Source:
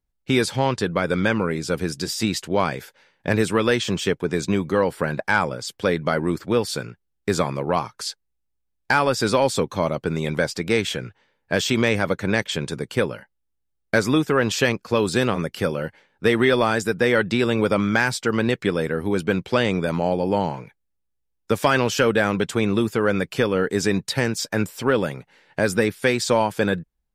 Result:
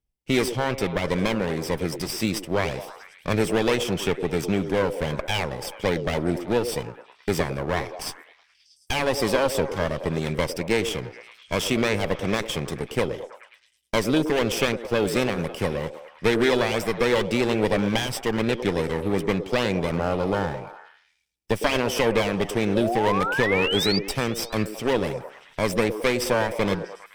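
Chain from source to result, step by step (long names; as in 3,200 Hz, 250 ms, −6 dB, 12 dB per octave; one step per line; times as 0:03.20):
lower of the sound and its delayed copy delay 0.37 ms
sound drawn into the spectrogram rise, 0:22.75–0:23.99, 530–4,900 Hz −25 dBFS
echo through a band-pass that steps 107 ms, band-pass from 400 Hz, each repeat 0.7 octaves, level −7 dB
level −1.5 dB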